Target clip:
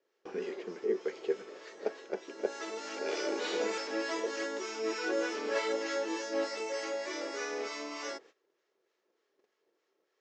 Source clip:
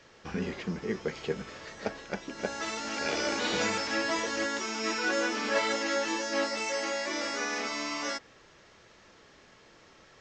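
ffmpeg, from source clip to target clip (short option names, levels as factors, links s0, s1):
-filter_complex "[0:a]highpass=f=390:t=q:w=4.1,acrossover=split=910[s0][s1];[s0]aeval=exprs='val(0)*(1-0.5/2+0.5/2*cos(2*PI*3.3*n/s))':c=same[s2];[s1]aeval=exprs='val(0)*(1-0.5/2-0.5/2*cos(2*PI*3.3*n/s))':c=same[s3];[s2][s3]amix=inputs=2:normalize=0,agate=range=0.126:threshold=0.00316:ratio=16:detection=peak,volume=0.531"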